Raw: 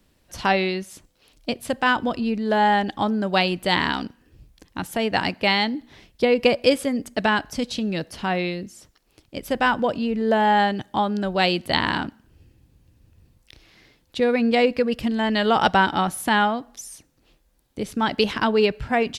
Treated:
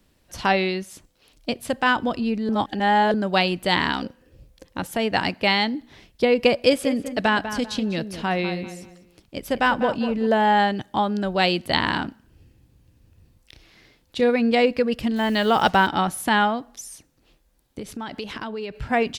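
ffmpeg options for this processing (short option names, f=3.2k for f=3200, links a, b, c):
-filter_complex "[0:a]asettb=1/sr,asplit=3[a][b][c];[a]atrim=end=4.024[d];[b]atrim=start=4.02:end=4.87,asetpts=PTS-STARTPTS,afade=t=in:d=0.004:c=qsin,afade=t=out:st=0.846:d=0.004:c=qsin,equalizer=f=530:w=5.6:g=14.5[e];[c]atrim=start=4.866[f];[d][e]acrossfade=d=0.004:c1=hsin:c2=qsin[g];[g][f]acrossfade=d=0.004:c1=qsin:c2=hsin,asettb=1/sr,asplit=3[h][i][j];[h]atrim=end=6.534[k];[i]atrim=start=6.53:end=10.27,asetpts=PTS-STARTPTS,afade=t=in:d=0.004:c=qsin,afade=t=out:st=3.736:d=0.004:c=qsin,asplit=2[l][m];[m]adelay=197,lowpass=f=2.7k:p=1,volume=-10dB,asplit=2[n][o];[o]adelay=197,lowpass=f=2.7k:p=1,volume=0.31,asplit=2[p][q];[q]adelay=197,lowpass=f=2.7k:p=1,volume=0.31[r];[l][n][p][r]amix=inputs=4:normalize=0,atrim=end_sample=164934[s];[j]atrim=start=10.266[t];[k][s]acrossfade=d=0.004:c1=hsin:c2=qsin[u];[u][t]acrossfade=d=0.004:c1=qsin:c2=hsin,asettb=1/sr,asplit=3[v][w][x];[v]atrim=end=12.054[y];[w]atrim=start=12.05:end=14.3,asetpts=PTS-STARTPTS,afade=t=in:d=0.004:c=qsin,afade=t=out:st=2.246:d=0.004:c=qsin,asplit=2[z][aa];[aa]adelay=33,volume=-12dB[ab];[z][ab]amix=inputs=2:normalize=0,atrim=end_sample=99225[ac];[x]atrim=start=14.296[ad];[y][ac]acrossfade=d=0.004:c1=hsin:c2=qsin[ae];[ae][ad]acrossfade=d=0.004:c1=qsin:c2=hsin,asettb=1/sr,asplit=3[af][ag][ah];[af]atrim=end=15.164[ai];[ag]atrim=start=15.16:end=15.87,asetpts=PTS-STARTPTS,afade=t=in:d=0.004:c=qsin,afade=t=out:st=0.706:d=0.004:c=qsin,acrusher=bits=6:mix=0:aa=0.5[aj];[ah]atrim=start=15.866[ak];[ai][aj]acrossfade=d=0.004:c1=hsin:c2=qsin[al];[al][ak]acrossfade=d=0.004:c1=qsin:c2=hsin,asettb=1/sr,asplit=3[am][an][ao];[am]atrim=end=17.794[ap];[an]atrim=start=17.79:end=18.76,asetpts=PTS-STARTPTS,afade=t=in:d=0.004:c=qsin,afade=t=out:st=0.966:d=0.004:c=qsin,acompressor=threshold=-30dB:ratio=4:attack=3.2:release=140:knee=1:detection=peak[aq];[ao]atrim=start=18.756[ar];[ap][aq]acrossfade=d=0.004:c1=hsin:c2=qsin[as];[as][ar]acrossfade=d=0.004:c1=qsin:c2=hsin,asplit=3[at][au][av];[at]atrim=end=2.492[aw];[au]atrim=start=2.488:end=3.142,asetpts=PTS-STARTPTS,areverse[ax];[av]atrim=start=3.138[ay];[aw][ax]acrossfade=d=0.004:c1=hsin:c2=hsin[az];[az][ay]acrossfade=d=0.004:c1=hsin:c2=hsin"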